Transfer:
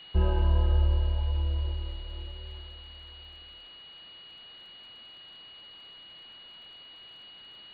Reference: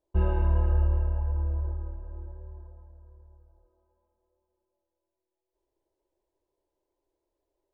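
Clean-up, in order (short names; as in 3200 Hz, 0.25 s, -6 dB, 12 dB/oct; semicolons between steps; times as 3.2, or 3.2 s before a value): de-click; notch 2900 Hz, Q 30; denoiser 30 dB, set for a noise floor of -50 dBFS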